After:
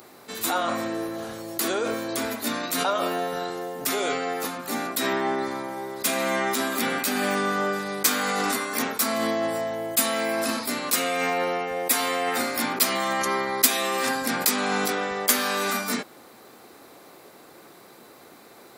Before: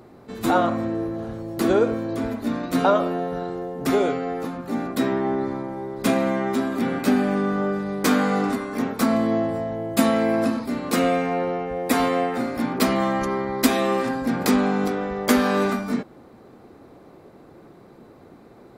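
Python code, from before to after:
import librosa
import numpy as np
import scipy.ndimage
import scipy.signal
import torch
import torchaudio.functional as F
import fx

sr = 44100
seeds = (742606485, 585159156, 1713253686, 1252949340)

p1 = fx.tilt_eq(x, sr, slope=4.5)
p2 = fx.over_compress(p1, sr, threshold_db=-27.0, ratio=-0.5)
p3 = p1 + (p2 * librosa.db_to_amplitude(1.5))
y = p3 * librosa.db_to_amplitude(-6.0)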